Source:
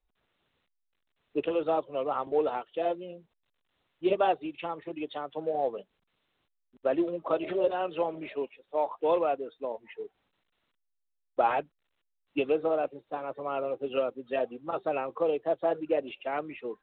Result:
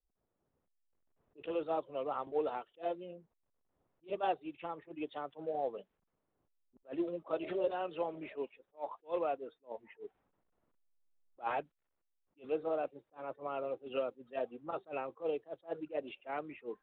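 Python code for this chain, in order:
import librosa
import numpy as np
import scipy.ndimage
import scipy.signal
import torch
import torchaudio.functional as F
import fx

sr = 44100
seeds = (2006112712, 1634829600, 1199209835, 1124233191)

y = fx.recorder_agc(x, sr, target_db=-22.0, rise_db_per_s=8.7, max_gain_db=30)
y = fx.env_lowpass(y, sr, base_hz=750.0, full_db=-25.0)
y = fx.attack_slew(y, sr, db_per_s=330.0)
y = y * 10.0 ** (-7.0 / 20.0)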